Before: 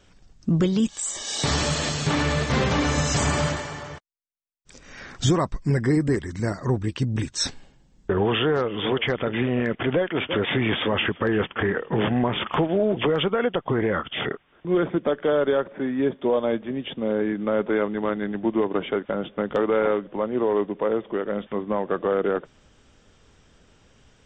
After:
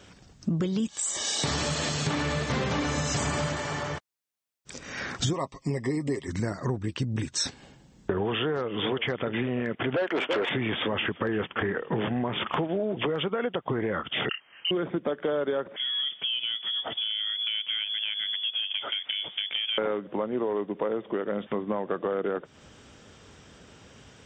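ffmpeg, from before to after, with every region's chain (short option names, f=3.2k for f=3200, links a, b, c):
-filter_complex "[0:a]asettb=1/sr,asplit=3[a][b][c];[a]atrim=end=5.334[d];[b]atrim=start=5.33:end=6.28,asetpts=PTS-STARTPTS,afade=t=in:d=0.004:c=qsin,afade=t=out:st=0.946:d=0.004:c=qsin,asuperstop=centerf=1500:order=4:qfactor=2.3,lowshelf=f=230:g=-11.5,aecho=1:1:7.4:0.44,atrim=end_sample=41895[e];[c]atrim=start=6.276[f];[d][e]acrossfade=d=0.004:c1=hsin:c2=qsin[g];[g][f]acrossfade=d=0.004:c1=qsin:c2=hsin,asettb=1/sr,asplit=3[h][i][j];[h]atrim=end=9.964[k];[i]atrim=start=9.96:end=10.49,asetpts=PTS-STARTPTS,afade=t=in:d=0.004:c=qsin,afade=t=out:st=0.526:d=0.004:c=qsin,highpass=400,highshelf=f=2.5k:g=-10,aeval=exprs='0.178*sin(PI/2*2*val(0)/0.178)':c=same[l];[j]atrim=start=10.486[m];[k][l]acrossfade=d=0.004:c1=hsin:c2=qsin[n];[n][m]acrossfade=d=0.004:c1=qsin:c2=hsin,asettb=1/sr,asplit=3[o][p][q];[o]atrim=end=14.294[r];[p]atrim=start=14.29:end=14.71,asetpts=PTS-STARTPTS,afade=t=in:d=0.004:c=qsin,afade=t=out:st=0.416:d=0.004:c=qsin,asplit=2[s][t];[t]adelay=29,volume=-10.5dB[u];[s][u]amix=inputs=2:normalize=0,atrim=end_sample=18522,lowpass=f=2.7k:t=q:w=0.5098,lowpass=f=2.7k:t=q:w=0.6013,lowpass=f=2.7k:t=q:w=0.9,lowpass=f=2.7k:t=q:w=2.563,afreqshift=-3200[v];[q]atrim=start=14.706[w];[r][v]acrossfade=d=0.004:c1=hsin:c2=qsin[x];[x][w]acrossfade=d=0.004:c1=qsin:c2=hsin,asettb=1/sr,asplit=3[y][z][aa];[y]atrim=end=15.764[ab];[z]atrim=start=15.76:end=19.78,asetpts=PTS-STARTPTS,afade=t=in:d=0.004:c=qsin,afade=t=out:st=4.016:d=0.004:c=qsin,acompressor=threshold=-35dB:ratio=2:attack=3.2:release=140:knee=1:detection=peak,lowpass=f=3.1k:t=q:w=0.5098,lowpass=f=3.1k:t=q:w=0.6013,lowpass=f=3.1k:t=q:w=0.9,lowpass=f=3.1k:t=q:w=2.563,afreqshift=-3600[ac];[aa]atrim=start=19.776[ad];[ab][ac]acrossfade=d=0.004:c1=hsin:c2=qsin[ae];[ae][ad]acrossfade=d=0.004:c1=qsin:c2=hsin,highpass=78,acompressor=threshold=-34dB:ratio=4,volume=6.5dB"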